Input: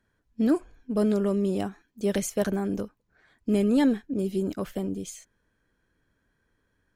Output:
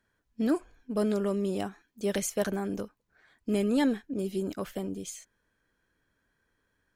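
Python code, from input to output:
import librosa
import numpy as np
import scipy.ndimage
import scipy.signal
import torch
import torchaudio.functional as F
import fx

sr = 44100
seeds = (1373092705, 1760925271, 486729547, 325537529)

y = fx.low_shelf(x, sr, hz=440.0, db=-6.0)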